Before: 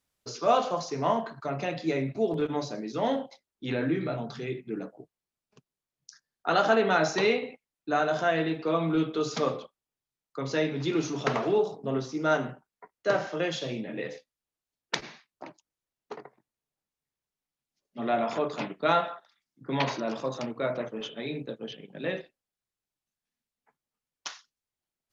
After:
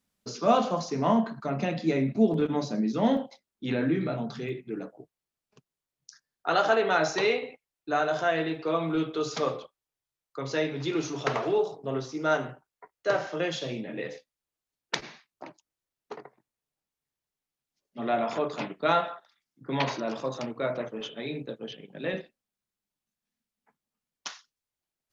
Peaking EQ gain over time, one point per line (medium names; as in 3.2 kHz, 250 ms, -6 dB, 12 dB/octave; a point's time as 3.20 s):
peaking EQ 210 Hz 0.57 oct
+13 dB
from 3.17 s +6 dB
from 4.49 s -2 dB
from 6.47 s -9 dB
from 13.29 s -1 dB
from 22.14 s +8 dB
from 24.30 s -1 dB